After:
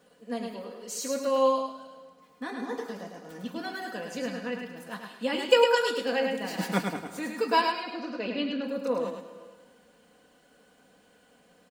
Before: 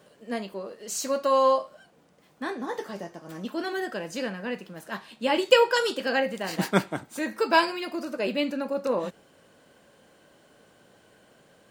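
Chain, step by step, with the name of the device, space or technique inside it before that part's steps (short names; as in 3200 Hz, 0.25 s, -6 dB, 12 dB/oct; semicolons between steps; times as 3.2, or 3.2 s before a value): 7.61–8.64 LPF 5300 Hz 24 dB/oct; comb 4.1 ms, depth 70%; feedback echo 0.105 s, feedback 31%, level -4.5 dB; compressed reverb return (on a send at -9.5 dB: reverb RT60 1.3 s, pre-delay 97 ms + compressor, threshold -24 dBFS, peak gain reduction 13.5 dB); on the sum: gain -6 dB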